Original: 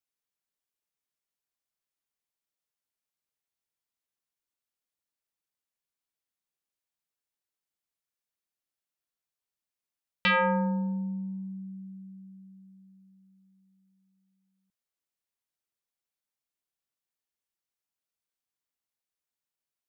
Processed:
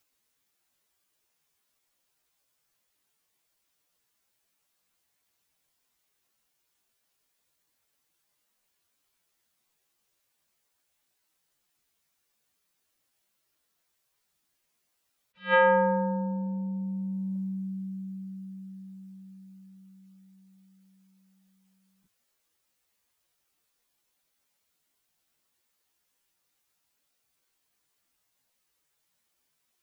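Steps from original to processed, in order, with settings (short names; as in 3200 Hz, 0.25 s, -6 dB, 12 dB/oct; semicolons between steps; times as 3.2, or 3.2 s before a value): in parallel at +0.5 dB: negative-ratio compressor -39 dBFS, ratio -1; on the sum: plain phase-vocoder stretch 1.5×; attack slew limiter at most 260 dB/s; gain +6.5 dB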